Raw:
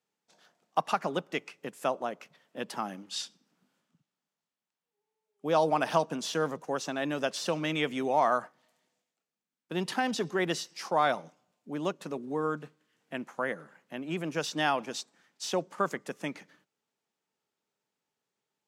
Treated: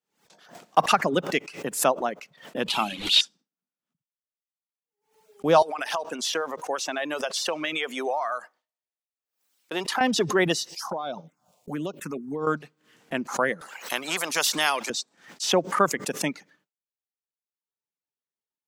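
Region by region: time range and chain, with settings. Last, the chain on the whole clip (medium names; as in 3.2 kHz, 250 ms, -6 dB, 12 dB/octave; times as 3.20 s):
2.68–3.21 s: one-bit delta coder 64 kbps, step -40.5 dBFS + high-order bell 3.2 kHz +14 dB 1 oct + hum notches 60/120/180/240/300/360/420/480 Hz
5.62–10.01 s: high-pass 460 Hz + compression 16:1, threshold -29 dBFS
10.69–12.47 s: touch-sensitive phaser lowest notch 220 Hz, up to 1.9 kHz, full sweep at -27 dBFS + treble shelf 8.8 kHz +6 dB + compression 16:1, threshold -33 dBFS
13.61–14.90 s: high-pass 690 Hz + spectrum-flattening compressor 2:1
whole clip: gate with hold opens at -55 dBFS; reverb removal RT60 1.1 s; swell ahead of each attack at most 130 dB/s; trim +8 dB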